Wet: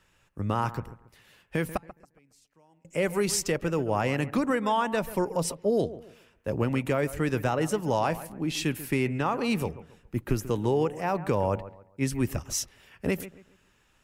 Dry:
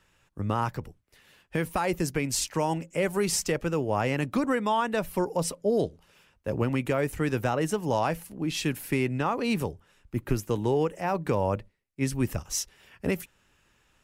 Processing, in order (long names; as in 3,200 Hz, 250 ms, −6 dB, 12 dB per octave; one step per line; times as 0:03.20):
0:01.77–0:02.85: gate with flip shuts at −31 dBFS, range −34 dB
bucket-brigade delay 138 ms, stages 2,048, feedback 30%, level −15 dB